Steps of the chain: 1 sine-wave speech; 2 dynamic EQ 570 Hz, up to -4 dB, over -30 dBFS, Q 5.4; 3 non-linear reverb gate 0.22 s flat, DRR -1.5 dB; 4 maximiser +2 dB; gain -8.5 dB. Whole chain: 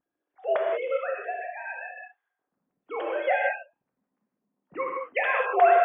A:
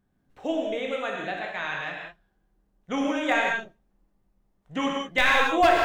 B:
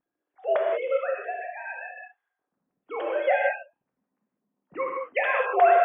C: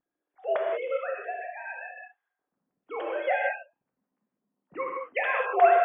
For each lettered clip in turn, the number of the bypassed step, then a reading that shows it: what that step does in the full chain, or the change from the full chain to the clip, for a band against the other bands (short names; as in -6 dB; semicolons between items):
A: 1, 250 Hz band +16.5 dB; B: 2, momentary loudness spread change +1 LU; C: 4, crest factor change +3.5 dB